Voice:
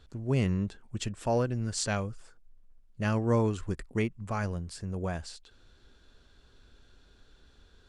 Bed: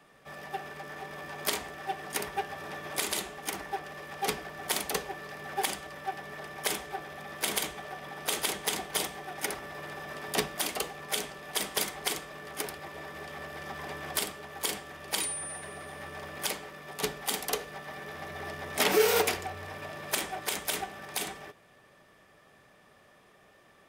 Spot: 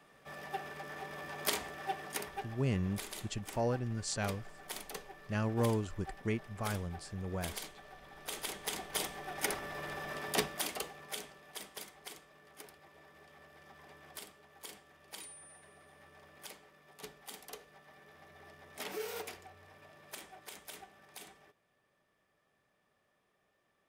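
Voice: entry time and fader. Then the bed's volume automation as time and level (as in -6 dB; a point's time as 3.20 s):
2.30 s, -5.5 dB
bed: 1.94 s -3 dB
2.67 s -13 dB
8.06 s -13 dB
9.49 s -1 dB
10.20 s -1 dB
11.84 s -17 dB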